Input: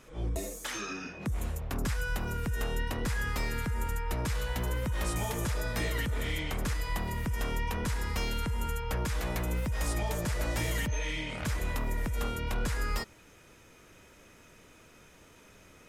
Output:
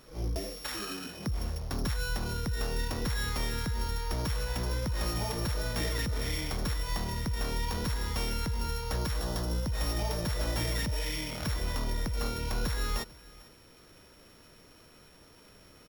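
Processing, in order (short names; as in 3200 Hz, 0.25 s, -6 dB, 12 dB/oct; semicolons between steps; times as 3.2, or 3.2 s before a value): sample sorter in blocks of 8 samples; 9.2–9.67 bell 2300 Hz -11.5 dB 0.41 oct; echo 0.445 s -23 dB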